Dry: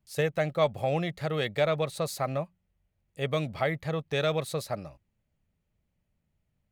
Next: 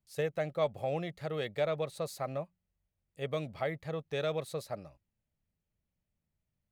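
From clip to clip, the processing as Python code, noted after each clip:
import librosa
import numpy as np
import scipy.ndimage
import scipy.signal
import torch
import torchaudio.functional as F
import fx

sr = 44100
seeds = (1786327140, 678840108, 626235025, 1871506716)

y = fx.dynamic_eq(x, sr, hz=480.0, q=1.0, threshold_db=-37.0, ratio=4.0, max_db=4)
y = y * librosa.db_to_amplitude(-8.5)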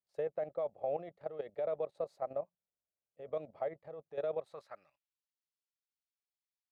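y = fx.filter_sweep_bandpass(x, sr, from_hz=600.0, to_hz=4500.0, start_s=4.36, end_s=5.19, q=1.6)
y = fx.level_steps(y, sr, step_db=12)
y = y * librosa.db_to_amplitude(2.5)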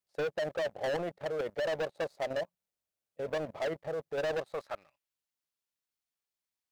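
y = fx.leveller(x, sr, passes=2)
y = 10.0 ** (-36.5 / 20.0) * np.tanh(y / 10.0 ** (-36.5 / 20.0))
y = y * librosa.db_to_amplitude(7.0)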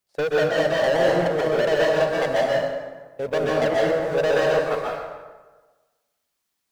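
y = fx.rev_plate(x, sr, seeds[0], rt60_s=1.3, hf_ratio=0.65, predelay_ms=115, drr_db=-4.5)
y = y * librosa.db_to_amplitude(8.5)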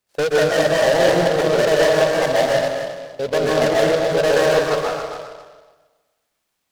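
y = fx.echo_feedback(x, sr, ms=268, feedback_pct=15, wet_db=-10.0)
y = fx.noise_mod_delay(y, sr, seeds[1], noise_hz=3100.0, depth_ms=0.037)
y = y * librosa.db_to_amplitude(4.0)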